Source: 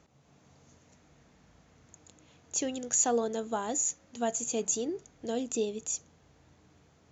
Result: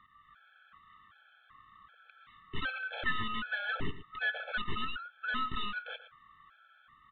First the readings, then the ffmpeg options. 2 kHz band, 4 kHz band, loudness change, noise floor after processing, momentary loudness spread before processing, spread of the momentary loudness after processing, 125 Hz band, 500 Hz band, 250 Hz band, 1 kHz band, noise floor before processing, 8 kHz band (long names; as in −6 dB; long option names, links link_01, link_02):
+15.0 dB, +4.5 dB, −5.0 dB, −64 dBFS, 9 LU, 8 LU, +5.0 dB, −17.0 dB, −10.5 dB, −0.5 dB, −63 dBFS, can't be measured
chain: -filter_complex "[0:a]afftfilt=real='real(if(lt(b,960),b+48*(1-2*mod(floor(b/48),2)),b),0)':imag='imag(if(lt(b,960),b+48*(1-2*mod(floor(b/48),2)),b),0)':win_size=2048:overlap=0.75,acrossover=split=230|880[link_01][link_02][link_03];[link_02]acrusher=bits=4:mix=0:aa=0.000001[link_04];[link_01][link_04][link_03]amix=inputs=3:normalize=0,aeval=exprs='0.188*(cos(1*acos(clip(val(0)/0.188,-1,1)))-cos(1*PI/2))+0.0119*(cos(4*acos(clip(val(0)/0.188,-1,1)))-cos(4*PI/2))+0.0335*(cos(6*acos(clip(val(0)/0.188,-1,1)))-cos(6*PI/2))+0.0473*(cos(8*acos(clip(val(0)/0.188,-1,1)))-cos(8*PI/2))':channel_layout=same,aresample=8000,asoftclip=type=tanh:threshold=-29dB,aresample=44100,aecho=1:1:115:0.211,afftfilt=real='re*gt(sin(2*PI*1.3*pts/sr)*(1-2*mod(floor(b*sr/1024/440),2)),0)':imag='im*gt(sin(2*PI*1.3*pts/sr)*(1-2*mod(floor(b*sr/1024/440),2)),0)':win_size=1024:overlap=0.75,volume=6dB"